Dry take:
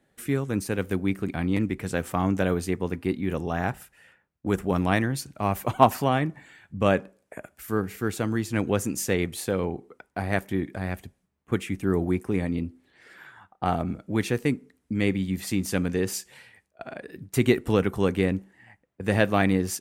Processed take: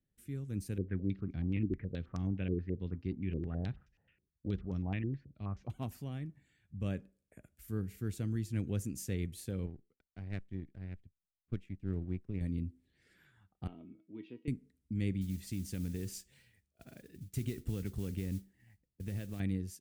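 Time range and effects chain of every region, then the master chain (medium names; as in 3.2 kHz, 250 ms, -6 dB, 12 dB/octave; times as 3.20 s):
0.78–5.70 s: distance through air 190 m + step-sequenced low-pass 9.4 Hz 370–5900 Hz
9.66–12.41 s: low-pass 3.3 kHz + power-law waveshaper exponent 1.4
13.67–14.48 s: cabinet simulation 240–3100 Hz, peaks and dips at 250 Hz +8 dB, 400 Hz +7 dB, 960 Hz +5 dB, 1.7 kHz -9 dB, 2.9 kHz +6 dB + feedback comb 320 Hz, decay 0.26 s, mix 80%
15.21–19.40 s: peaking EQ 11 kHz -6 dB 0.23 oct + compression 4:1, threshold -23 dBFS + modulation noise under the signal 16 dB
whole clip: level rider gain up to 7.5 dB; amplifier tone stack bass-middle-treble 10-0-1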